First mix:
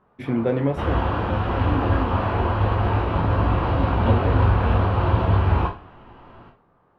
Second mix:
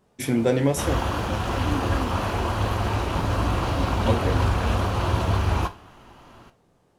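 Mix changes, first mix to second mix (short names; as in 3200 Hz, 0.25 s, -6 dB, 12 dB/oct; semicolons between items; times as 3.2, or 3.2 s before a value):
first sound: add bell 1200 Hz -12 dB 1.2 oct; second sound: send -11.0 dB; master: remove air absorption 440 m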